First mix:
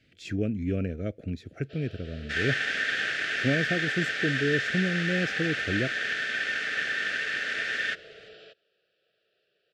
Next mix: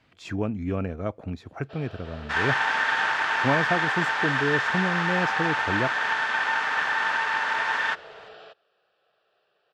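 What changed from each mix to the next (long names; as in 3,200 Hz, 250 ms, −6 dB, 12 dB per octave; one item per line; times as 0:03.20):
master: remove Butterworth band-reject 960 Hz, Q 0.81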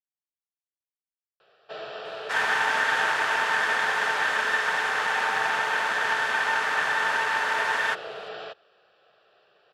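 speech: muted
first sound +8.5 dB
second sound: remove low-pass filter 5,400 Hz 12 dB per octave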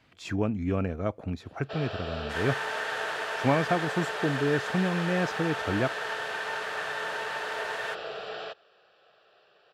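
speech: unmuted
second sound −10.0 dB
master: add high-shelf EQ 7,900 Hz +6 dB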